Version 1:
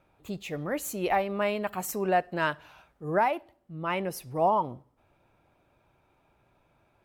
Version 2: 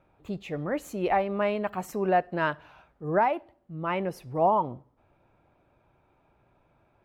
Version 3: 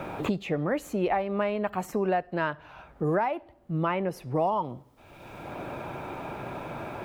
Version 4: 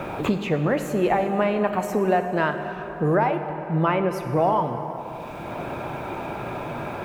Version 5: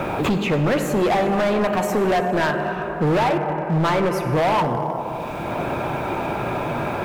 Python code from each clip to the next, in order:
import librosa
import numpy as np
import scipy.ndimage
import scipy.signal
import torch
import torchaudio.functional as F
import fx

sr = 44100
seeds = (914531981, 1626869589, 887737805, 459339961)

y1 = fx.lowpass(x, sr, hz=1900.0, slope=6)
y1 = y1 * librosa.db_to_amplitude(2.0)
y2 = fx.band_squash(y1, sr, depth_pct=100)
y3 = fx.rev_plate(y2, sr, seeds[0], rt60_s=4.2, hf_ratio=0.55, predelay_ms=0, drr_db=6.5)
y3 = y3 * librosa.db_to_amplitude(5.0)
y4 = np.clip(y3, -10.0 ** (-22.5 / 20.0), 10.0 ** (-22.5 / 20.0))
y4 = y4 * librosa.db_to_amplitude(6.5)